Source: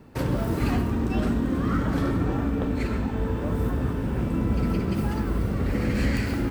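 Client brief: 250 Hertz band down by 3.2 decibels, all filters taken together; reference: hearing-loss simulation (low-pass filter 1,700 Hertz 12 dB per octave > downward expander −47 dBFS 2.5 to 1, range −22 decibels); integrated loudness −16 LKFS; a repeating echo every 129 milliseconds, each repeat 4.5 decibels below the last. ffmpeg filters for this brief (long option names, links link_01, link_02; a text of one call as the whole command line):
ffmpeg -i in.wav -af "lowpass=1700,equalizer=frequency=250:width_type=o:gain=-4,aecho=1:1:129|258|387|516|645|774|903|1032|1161:0.596|0.357|0.214|0.129|0.0772|0.0463|0.0278|0.0167|0.01,agate=range=-22dB:threshold=-47dB:ratio=2.5,volume=10dB" out.wav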